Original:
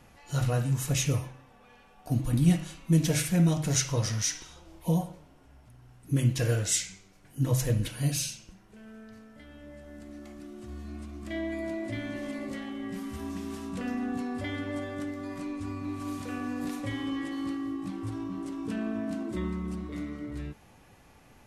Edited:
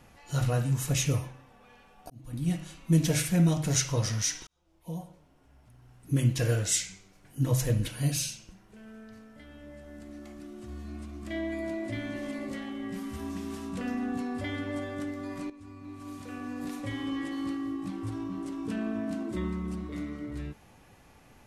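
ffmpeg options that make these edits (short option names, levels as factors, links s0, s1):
-filter_complex "[0:a]asplit=4[s0][s1][s2][s3];[s0]atrim=end=2.1,asetpts=PTS-STARTPTS,afade=t=out:st=2.096:d=0.004:c=hsin[s4];[s1]atrim=start=2.1:end=4.47,asetpts=PTS-STARTPTS,afade=t=in:d=0.84,afade=t=out:st=2.366:d=0.004:c=hsin[s5];[s2]atrim=start=4.47:end=15.5,asetpts=PTS-STARTPTS,afade=t=in:d=1.67,afade=t=out:st=11.026:d=0.004:c=hsin:silence=0.188365[s6];[s3]atrim=start=15.5,asetpts=PTS-STARTPTS,afade=t=in:d=1.72:silence=0.188365[s7];[s4][s5][s6][s7]concat=n=4:v=0:a=1"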